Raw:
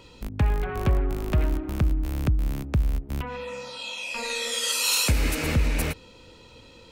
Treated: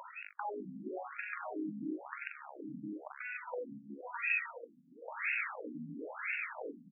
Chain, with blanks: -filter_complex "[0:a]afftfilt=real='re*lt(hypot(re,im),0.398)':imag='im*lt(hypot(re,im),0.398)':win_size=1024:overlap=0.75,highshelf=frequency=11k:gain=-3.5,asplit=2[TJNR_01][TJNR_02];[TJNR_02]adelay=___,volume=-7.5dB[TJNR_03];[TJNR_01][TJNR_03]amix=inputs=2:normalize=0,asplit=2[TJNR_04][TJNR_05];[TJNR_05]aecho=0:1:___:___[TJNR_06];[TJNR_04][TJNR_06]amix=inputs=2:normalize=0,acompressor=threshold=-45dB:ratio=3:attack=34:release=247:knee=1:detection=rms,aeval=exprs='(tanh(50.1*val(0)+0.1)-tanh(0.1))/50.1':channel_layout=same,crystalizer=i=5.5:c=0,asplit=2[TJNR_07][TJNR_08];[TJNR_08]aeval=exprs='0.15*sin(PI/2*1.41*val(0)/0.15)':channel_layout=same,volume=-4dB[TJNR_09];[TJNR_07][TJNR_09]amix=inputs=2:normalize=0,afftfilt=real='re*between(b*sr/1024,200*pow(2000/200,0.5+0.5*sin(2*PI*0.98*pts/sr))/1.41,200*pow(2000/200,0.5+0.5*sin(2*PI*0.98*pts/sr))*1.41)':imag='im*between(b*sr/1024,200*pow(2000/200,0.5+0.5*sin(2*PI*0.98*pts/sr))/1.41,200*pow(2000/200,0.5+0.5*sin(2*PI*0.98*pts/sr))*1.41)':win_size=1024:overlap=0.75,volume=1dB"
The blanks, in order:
42, 798, 0.631